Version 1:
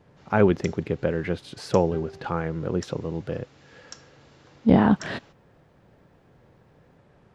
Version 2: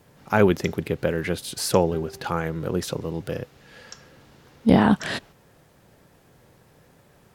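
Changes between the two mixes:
speech: remove head-to-tape spacing loss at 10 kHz 22 dB
first sound: remove Butterworth high-pass 240 Hz 36 dB per octave

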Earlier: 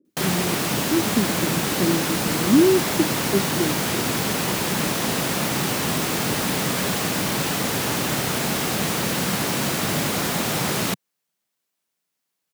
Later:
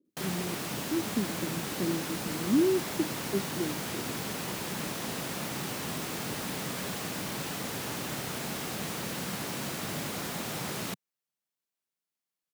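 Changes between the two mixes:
speech −9.0 dB
background −12.0 dB

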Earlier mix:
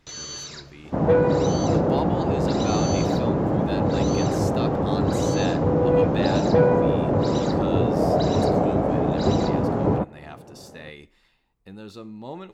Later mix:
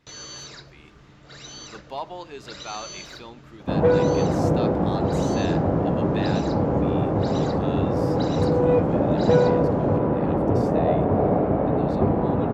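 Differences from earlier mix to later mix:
speech: add high-pass filter 870 Hz 6 dB per octave
second sound: entry +2.75 s
master: add high-shelf EQ 5,200 Hz −8 dB

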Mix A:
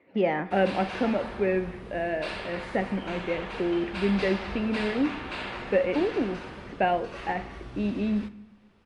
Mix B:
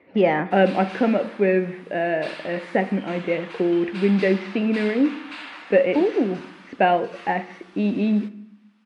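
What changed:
speech +6.5 dB
background: add high-pass filter 1,000 Hz 12 dB per octave

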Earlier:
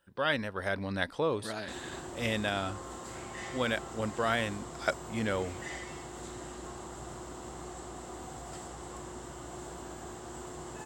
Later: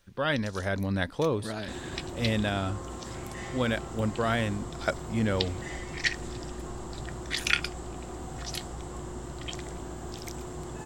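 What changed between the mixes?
first sound: unmuted
master: add low-shelf EQ 280 Hz +10 dB

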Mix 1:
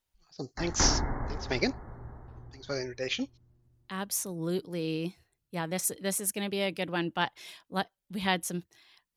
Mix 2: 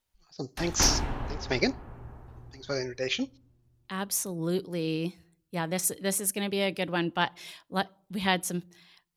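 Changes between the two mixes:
background: remove linear-phase brick-wall low-pass 2,200 Hz
reverb: on, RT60 0.55 s

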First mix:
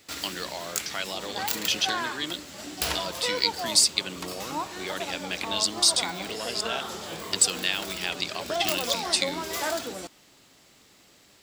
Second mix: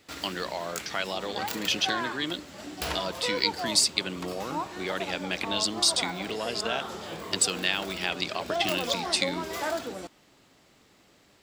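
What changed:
speech +4.0 dB
master: add high-shelf EQ 3,100 Hz −9 dB

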